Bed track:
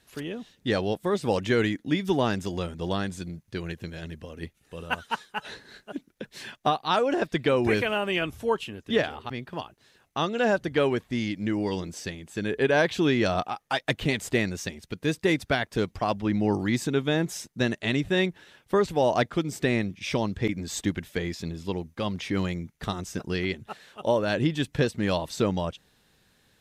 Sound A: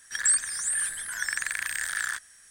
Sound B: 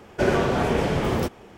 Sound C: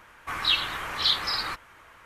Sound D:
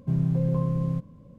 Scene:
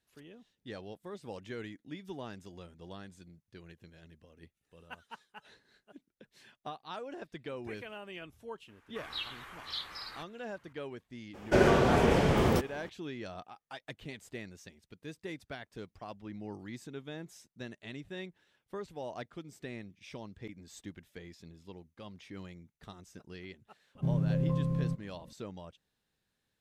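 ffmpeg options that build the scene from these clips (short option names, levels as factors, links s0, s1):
-filter_complex "[0:a]volume=0.119[s0];[3:a]atrim=end=2.05,asetpts=PTS-STARTPTS,volume=0.168,afade=t=in:d=0.004:c=hsin,afade=t=out:st=2.046:d=0.004:c=hsin,adelay=8680[s1];[2:a]atrim=end=1.57,asetpts=PTS-STARTPTS,volume=0.75,afade=t=in:d=0.02,afade=t=out:st=1.55:d=0.02,adelay=11330[s2];[4:a]atrim=end=1.38,asetpts=PTS-STARTPTS,volume=0.531,afade=t=in:d=0.004:c=hsin,afade=t=out:st=1.376:d=0.004:c=hsin,adelay=23950[s3];[s0][s1][s2][s3]amix=inputs=4:normalize=0"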